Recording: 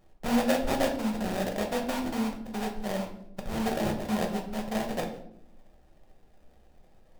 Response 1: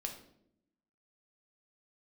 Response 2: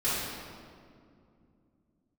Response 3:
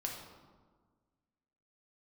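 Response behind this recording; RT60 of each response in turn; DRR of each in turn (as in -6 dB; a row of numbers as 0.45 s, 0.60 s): 1; 0.75 s, 2.4 s, 1.5 s; 2.5 dB, -12.5 dB, -1.0 dB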